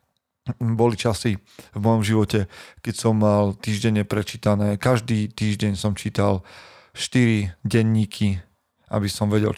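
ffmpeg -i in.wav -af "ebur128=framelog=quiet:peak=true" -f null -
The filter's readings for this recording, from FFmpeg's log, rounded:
Integrated loudness:
  I:         -22.2 LUFS
  Threshold: -32.6 LUFS
Loudness range:
  LRA:         1.6 LU
  Threshold: -42.5 LUFS
  LRA low:   -23.2 LUFS
  LRA high:  -21.7 LUFS
True peak:
  Peak:       -5.1 dBFS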